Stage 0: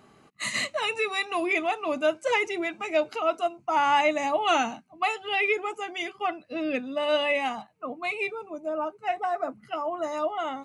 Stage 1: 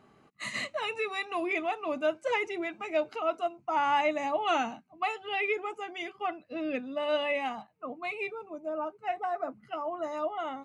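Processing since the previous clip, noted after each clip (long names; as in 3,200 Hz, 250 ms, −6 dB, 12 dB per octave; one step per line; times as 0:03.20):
high-shelf EQ 4,500 Hz −9 dB
level −4 dB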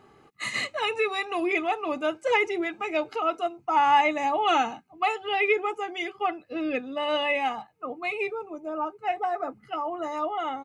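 comb filter 2.4 ms, depth 42%
level +4.5 dB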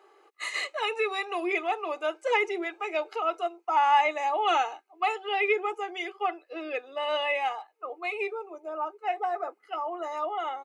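elliptic high-pass filter 360 Hz, stop band 50 dB
level −1.5 dB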